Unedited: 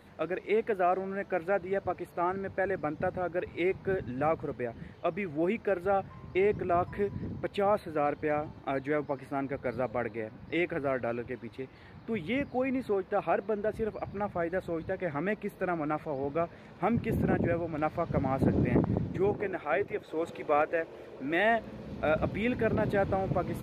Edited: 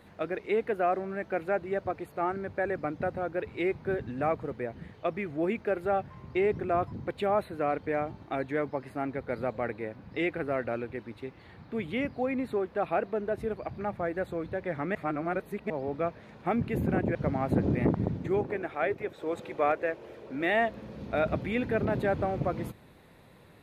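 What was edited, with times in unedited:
6.92–7.28 s: delete
15.31–16.06 s: reverse
17.51–18.05 s: delete

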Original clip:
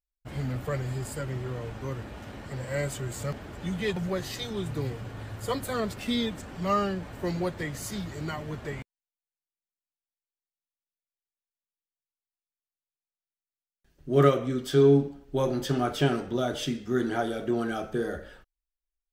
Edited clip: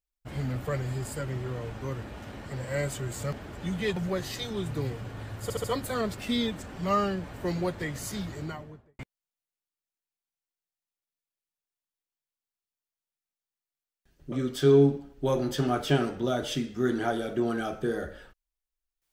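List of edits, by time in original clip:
5.43 s: stutter 0.07 s, 4 plays
8.04–8.78 s: studio fade out
14.11–14.43 s: delete

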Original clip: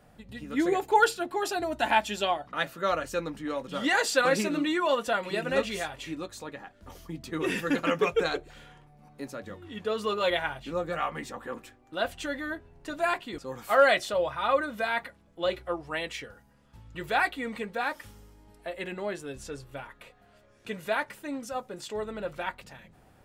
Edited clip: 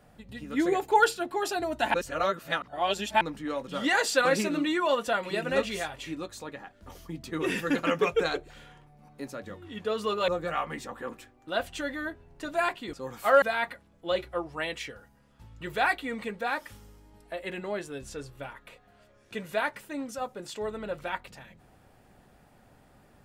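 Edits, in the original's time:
1.94–3.21 s: reverse
10.28–10.73 s: delete
13.87–14.76 s: delete

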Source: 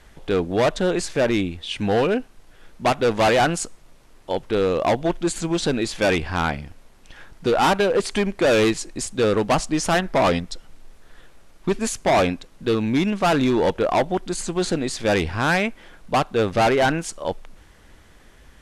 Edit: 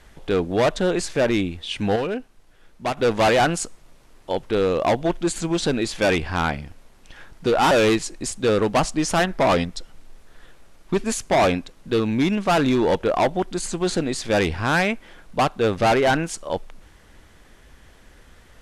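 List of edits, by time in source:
1.96–2.97 s: gain -5.5 dB
7.71–8.46 s: delete

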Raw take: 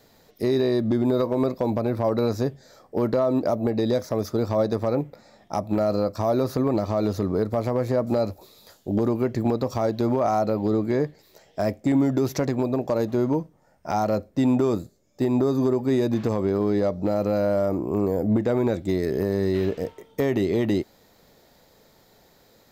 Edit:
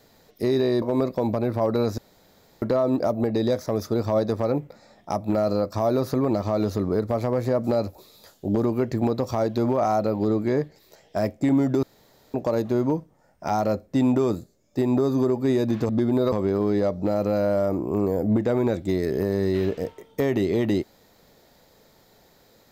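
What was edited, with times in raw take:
0.82–1.25 s: move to 16.32 s
2.41–3.05 s: room tone
12.26–12.77 s: room tone

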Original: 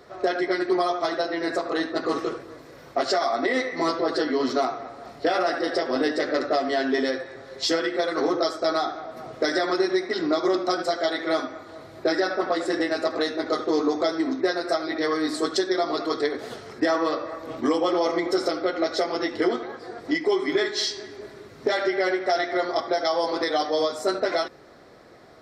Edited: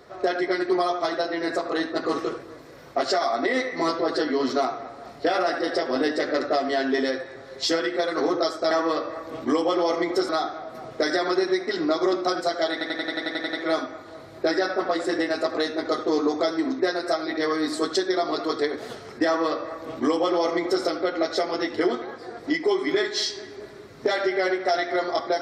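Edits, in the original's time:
11.14 s: stutter 0.09 s, 10 plays
16.87–18.45 s: copy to 8.71 s

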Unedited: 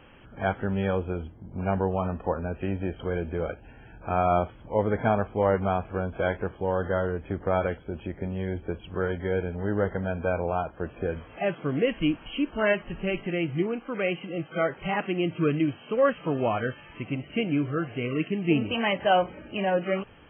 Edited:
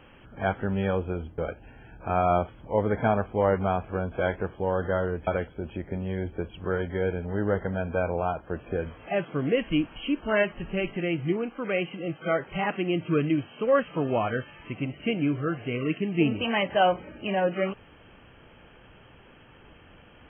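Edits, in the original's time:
1.38–3.39 s: delete
7.28–7.57 s: delete

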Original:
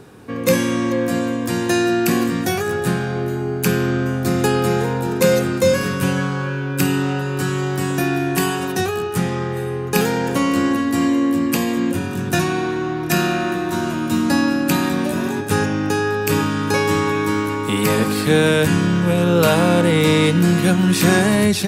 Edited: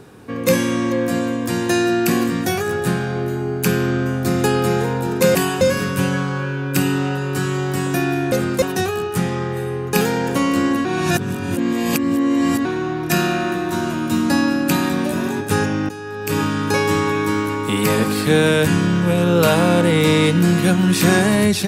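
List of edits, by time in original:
5.35–5.65 s: swap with 8.36–8.62 s
10.85–12.65 s: reverse
15.89–16.43 s: fade in quadratic, from -13.5 dB

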